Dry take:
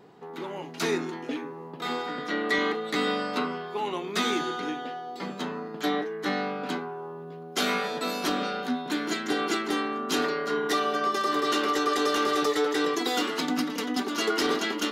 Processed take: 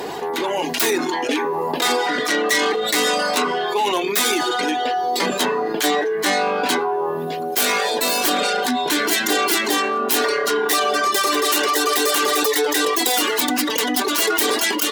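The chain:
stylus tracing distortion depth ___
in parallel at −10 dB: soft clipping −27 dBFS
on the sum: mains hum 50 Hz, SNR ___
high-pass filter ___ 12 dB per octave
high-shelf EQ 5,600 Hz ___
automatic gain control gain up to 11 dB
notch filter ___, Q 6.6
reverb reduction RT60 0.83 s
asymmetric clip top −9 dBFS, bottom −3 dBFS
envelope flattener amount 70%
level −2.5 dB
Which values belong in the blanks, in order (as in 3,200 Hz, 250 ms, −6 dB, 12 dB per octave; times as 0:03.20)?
0.22 ms, 25 dB, 360 Hz, +10.5 dB, 1,300 Hz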